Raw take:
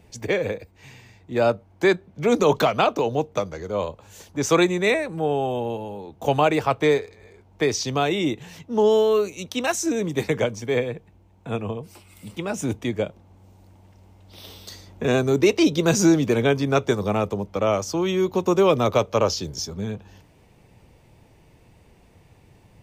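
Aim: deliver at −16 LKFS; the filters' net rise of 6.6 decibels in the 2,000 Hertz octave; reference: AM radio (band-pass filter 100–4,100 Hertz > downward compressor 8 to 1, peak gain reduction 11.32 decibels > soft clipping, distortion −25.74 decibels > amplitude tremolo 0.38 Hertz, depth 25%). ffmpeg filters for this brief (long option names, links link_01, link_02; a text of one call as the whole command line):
ffmpeg -i in.wav -af "highpass=100,lowpass=4100,equalizer=frequency=2000:width_type=o:gain=8.5,acompressor=threshold=-22dB:ratio=8,asoftclip=threshold=-13.5dB,tremolo=f=0.38:d=0.25,volume=13.5dB" out.wav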